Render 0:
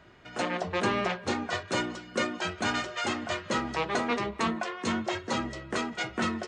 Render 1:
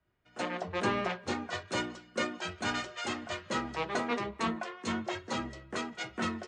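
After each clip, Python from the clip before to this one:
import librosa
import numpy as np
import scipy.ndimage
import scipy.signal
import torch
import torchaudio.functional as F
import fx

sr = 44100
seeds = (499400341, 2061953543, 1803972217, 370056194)

y = fx.band_widen(x, sr, depth_pct=70)
y = y * 10.0 ** (-4.0 / 20.0)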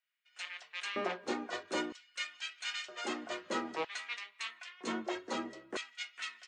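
y = fx.filter_lfo_highpass(x, sr, shape='square', hz=0.52, low_hz=310.0, high_hz=2400.0, q=1.5)
y = y * 10.0 ** (-3.5 / 20.0)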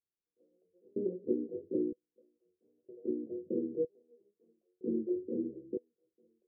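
y = scipy.signal.sosfilt(scipy.signal.cheby1(6, 3, 500.0, 'lowpass', fs=sr, output='sos'), x)
y = y * 10.0 ** (7.5 / 20.0)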